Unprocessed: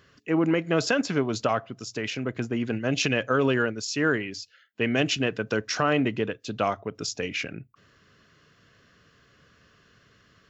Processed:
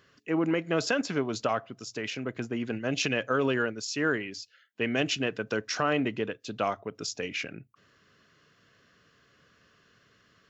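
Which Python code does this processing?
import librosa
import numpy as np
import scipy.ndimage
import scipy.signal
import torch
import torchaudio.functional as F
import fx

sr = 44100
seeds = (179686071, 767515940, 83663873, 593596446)

y = fx.low_shelf(x, sr, hz=100.0, db=-9.0)
y = y * 10.0 ** (-3.0 / 20.0)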